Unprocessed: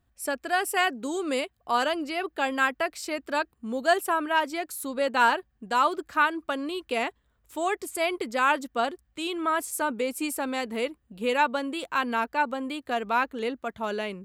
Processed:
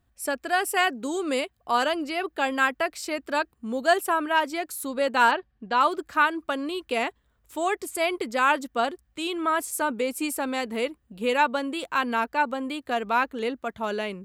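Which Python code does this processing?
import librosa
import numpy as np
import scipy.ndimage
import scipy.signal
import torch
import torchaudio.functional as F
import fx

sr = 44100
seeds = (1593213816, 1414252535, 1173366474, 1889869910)

y = fx.lowpass(x, sr, hz=4900.0, slope=24, at=(5.31, 5.81))
y = y * 10.0 ** (1.5 / 20.0)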